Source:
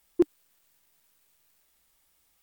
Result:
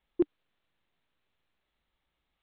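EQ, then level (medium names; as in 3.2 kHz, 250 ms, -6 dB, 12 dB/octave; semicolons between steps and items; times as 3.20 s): steep low-pass 3.9 kHz 72 dB/octave; bass shelf 390 Hz +5 dB; -7.0 dB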